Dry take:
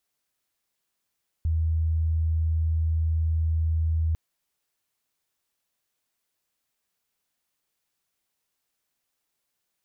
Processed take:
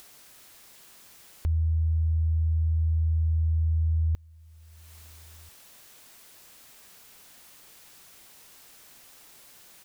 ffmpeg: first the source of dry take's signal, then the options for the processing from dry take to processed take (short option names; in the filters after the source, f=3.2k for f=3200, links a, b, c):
-f lavfi -i "sine=f=80.4:d=2.7:r=44100,volume=-2.94dB"
-filter_complex "[0:a]acompressor=mode=upward:threshold=-30dB:ratio=2.5,asplit=2[a][b];[b]adelay=1341,volume=-27dB,highshelf=f=4k:g=-30.2[c];[a][c]amix=inputs=2:normalize=0"